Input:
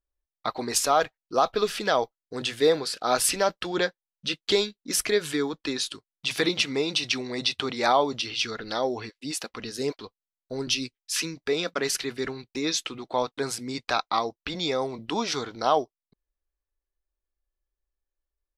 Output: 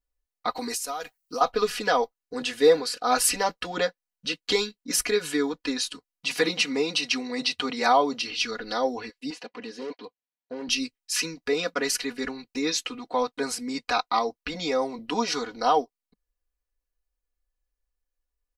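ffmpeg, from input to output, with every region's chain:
-filter_complex "[0:a]asettb=1/sr,asplit=3[a][b][c];[a]atrim=end=0.554[d];[b]atrim=start=0.55:end=1.41,asetpts=PTS-STARTPTS,afade=t=in:d=0.004:c=qsin,afade=t=out:st=0.856:d=0.004:c=qsin,aemphasis=mode=production:type=75kf,acompressor=threshold=-28dB:ratio=20:attack=3.2:release=140:knee=1:detection=peak[e];[c]atrim=start=1.406[f];[d][e]acrossfade=d=0.004:c1=hsin:c2=qsin[g];[g][f]acrossfade=d=0.004:c1=qsin:c2=hsin,asettb=1/sr,asplit=3[h][i][j];[h]atrim=end=9.304[k];[i]atrim=start=9.3:end=10.69,asetpts=PTS-STARTPTS,afade=t=in:d=0.004:c=qsin,afade=t=out:st=1.386:d=0.004:c=qsin,asoftclip=type=hard:threshold=-32dB,highpass=180,lowpass=3.5k,equalizer=f=1.3k:t=o:w=0.31:g=-8.5[l];[j]atrim=start=10.686[m];[k][l]acrossfade=d=0.004:c1=hsin:c2=qsin[n];[n][m]acrossfade=d=0.004:c1=qsin:c2=hsin,equalizer=f=200:t=o:w=0.27:g=-5.5,bandreject=f=3.5k:w=9.6,aecho=1:1:4.1:0.9,volume=-1.5dB"

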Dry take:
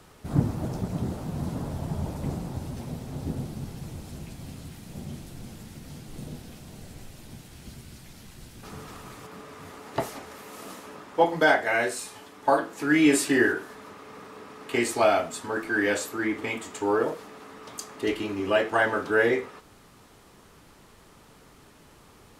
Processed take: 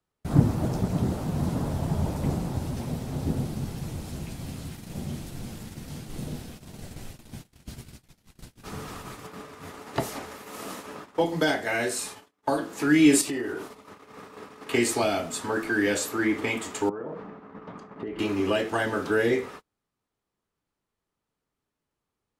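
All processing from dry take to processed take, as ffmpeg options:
-filter_complex "[0:a]asettb=1/sr,asplit=3[a][b][c];[a]atrim=end=13.214[d];[b]atrim=start=13.21:end=13.86,asetpts=PTS-STARTPTS,afade=t=in:d=0.004:c=qsin,afade=t=out:st=0.646:d=0.004:c=qsin,equalizer=f=1.6k:w=5.1:g=-9.5,bandreject=f=1.7k:w=15,acompressor=threshold=-32dB:ratio=5:attack=3.2:release=140:knee=1:detection=peak[e];[c]atrim=start=13.856[f];[d][e]acrossfade=d=0.004:c1=hsin:c2=qsin[g];[g][f]acrossfade=d=0.004:c1=qsin:c2=hsin,asettb=1/sr,asplit=3[h][i][j];[h]atrim=end=16.894[k];[i]atrim=start=16.89:end=18.19,asetpts=PTS-STARTPTS,afade=t=in:d=0.004:c=qsin,afade=t=out:st=1.296:d=0.004:c=qsin,lowpass=1.5k,acompressor=threshold=-35dB:ratio=12:attack=3.2:release=140:knee=1:detection=peak,equalizer=f=180:t=o:w=0.63:g=9.5[l];[j]atrim=start=18.186[m];[k][l]acrossfade=d=0.004:c1=hsin:c2=qsin[n];[n][m]acrossfade=d=0.004:c1=qsin:c2=hsin,agate=range=-35dB:threshold=-43dB:ratio=16:detection=peak,acrossover=split=370|3000[o][p][q];[p]acompressor=threshold=-31dB:ratio=6[r];[o][r][q]amix=inputs=3:normalize=0,volume=4dB"

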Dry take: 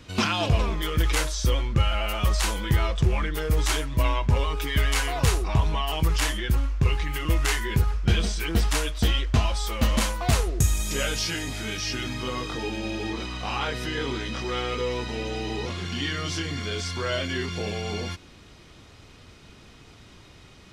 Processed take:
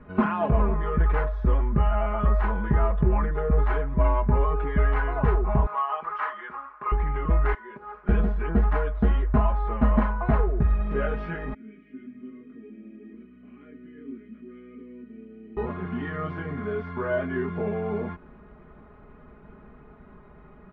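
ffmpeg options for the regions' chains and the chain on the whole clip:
-filter_complex "[0:a]asettb=1/sr,asplit=3[a][b][c];[a]atrim=end=5.664[d];[b]atrim=start=5.66:end=6.92,asetpts=PTS-STARTPTS,afade=t=in:d=0.004:c=qsin,afade=t=out:st=1.256:d=0.004:c=qsin,highpass=870,equalizer=f=1.2k:t=o:w=0.36:g=11[e];[c]atrim=start=6.916[f];[d][e]acrossfade=d=0.004:c1=hsin:c2=qsin[g];[g][f]acrossfade=d=0.004:c1=qsin:c2=hsin,asettb=1/sr,asplit=3[h][i][j];[h]atrim=end=7.544[k];[i]atrim=start=7.54:end=8.09,asetpts=PTS-STARTPTS,afade=t=in:d=0.004:c=qsin,afade=t=out:st=0.546:d=0.004:c=qsin,highpass=410,aemphasis=mode=production:type=50fm,acompressor=threshold=-35dB:ratio=12:attack=3.2:release=140:knee=1:detection=peak[l];[j]atrim=start=8.086[m];[k][l]acrossfade=d=0.004:c1=hsin:c2=qsin[n];[n][m]acrossfade=d=0.004:c1=qsin:c2=hsin,asettb=1/sr,asplit=3[o][p][q];[o]atrim=end=11.544[r];[p]atrim=start=11.54:end=15.57,asetpts=PTS-STARTPTS,afade=t=in:d=0.004:c=qsin,afade=t=out:st=4.026:d=0.004:c=qsin,asplit=3[s][t][u];[s]bandpass=f=270:t=q:w=8,volume=0dB[v];[t]bandpass=f=2.29k:t=q:w=8,volume=-6dB[w];[u]bandpass=f=3.01k:t=q:w=8,volume=-9dB[x];[v][w][x]amix=inputs=3:normalize=0,highshelf=f=2.2k:g=-11,bandreject=f=50:t=h:w=6,bandreject=f=100:t=h:w=6,bandreject=f=150:t=h:w=6,bandreject=f=200:t=h:w=6,bandreject=f=250:t=h:w=6,bandreject=f=300:t=h:w=6,bandreject=f=350:t=h:w=6,bandreject=f=400:t=h:w=6,bandreject=f=450:t=h:w=6,bandreject=f=500:t=h:w=6[y];[q]atrim=start=15.566[z];[r][y]acrossfade=d=0.004:c1=hsin:c2=qsin[aa];[aa][z]acrossfade=d=0.004:c1=qsin:c2=hsin,lowpass=f=1.5k:w=0.5412,lowpass=f=1.5k:w=1.3066,aecho=1:1:4.8:0.85"

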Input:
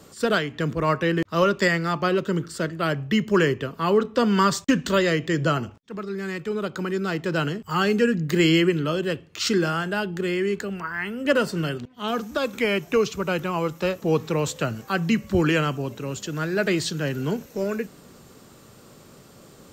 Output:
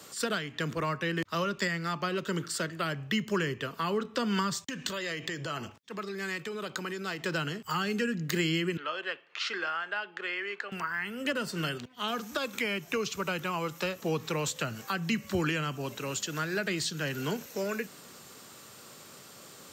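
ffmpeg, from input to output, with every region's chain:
-filter_complex "[0:a]asettb=1/sr,asplit=3[a][b][c];[a]atrim=end=4.594[d];[b]atrim=start=4.59:end=7.25,asetpts=PTS-STARTPTS,afade=t=in:d=0.004:c=qsin,afade=t=out:st=2.656:d=0.004:c=qsin,bandreject=f=1.4k:w=14,acompressor=threshold=-27dB:ratio=16:attack=3.2:release=140:knee=1:detection=peak[e];[c]atrim=start=7.246[f];[d][e]acrossfade=d=0.004:c1=hsin:c2=qsin[g];[g][f]acrossfade=d=0.004:c1=qsin:c2=hsin,asettb=1/sr,asplit=3[h][i][j];[h]atrim=end=8.774[k];[i]atrim=start=8.77:end=10.72,asetpts=PTS-STARTPTS,afade=t=in:d=0.004:c=qsin,afade=t=out:st=1.946:d=0.004:c=qsin,acompressor=mode=upward:threshold=-43dB:ratio=2.5:attack=3.2:release=140:knee=2.83:detection=peak,highpass=690,lowpass=2.5k[l];[j]atrim=start=10.716[m];[k][l]acrossfade=d=0.004:c1=hsin:c2=qsin[n];[n][m]acrossfade=d=0.004:c1=qsin:c2=hsin,highpass=83,tiltshelf=f=710:g=-6.5,acrossover=split=260[o][p];[p]acompressor=threshold=-28dB:ratio=6[q];[o][q]amix=inputs=2:normalize=0,volume=-2dB"

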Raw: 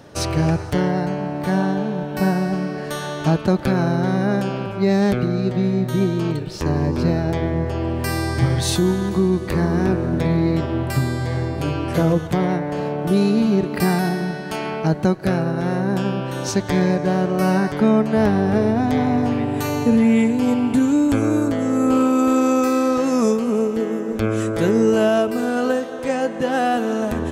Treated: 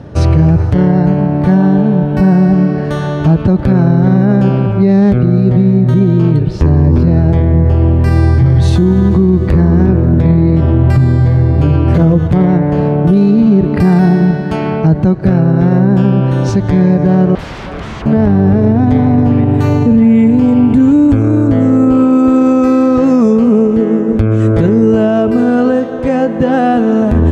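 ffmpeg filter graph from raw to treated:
-filter_complex "[0:a]asettb=1/sr,asplit=3[a][b][c];[a]atrim=end=17.354[d];[b]atrim=start=17.35:end=18.06,asetpts=PTS-STARTPTS,afade=t=in:d=0.004:c=qsin,afade=t=out:st=0.706:d=0.004:c=qsin,highpass=f=170:w=0.5412,highpass=f=170:w=1.3066,bass=f=250:g=-11,treble=f=4k:g=-7,aeval=exprs='0.0376*(abs(mod(val(0)/0.0376+3,4)-2)-1)':c=same[e];[c]atrim=start=18.056[f];[d][e]acrossfade=d=0.004:c1=hsin:c2=qsin[g];[g][f]acrossfade=d=0.004:c1=qsin:c2=hsin,highpass=41,aemphasis=mode=reproduction:type=riaa,alimiter=level_in=7.5dB:limit=-1dB:release=50:level=0:latency=1,volume=-1dB"

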